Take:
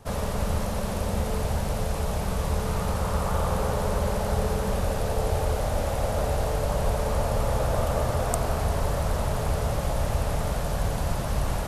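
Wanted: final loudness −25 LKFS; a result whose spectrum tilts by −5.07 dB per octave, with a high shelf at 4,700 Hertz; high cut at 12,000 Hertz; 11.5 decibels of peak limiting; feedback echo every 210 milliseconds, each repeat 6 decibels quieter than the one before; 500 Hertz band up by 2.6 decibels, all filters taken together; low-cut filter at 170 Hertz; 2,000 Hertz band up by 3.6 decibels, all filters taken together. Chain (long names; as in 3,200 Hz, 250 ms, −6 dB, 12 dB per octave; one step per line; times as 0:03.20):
high-pass filter 170 Hz
low-pass filter 12,000 Hz
parametric band 500 Hz +3 dB
parametric band 2,000 Hz +5.5 dB
high-shelf EQ 4,700 Hz −6 dB
brickwall limiter −21 dBFS
repeating echo 210 ms, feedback 50%, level −6 dB
level +4 dB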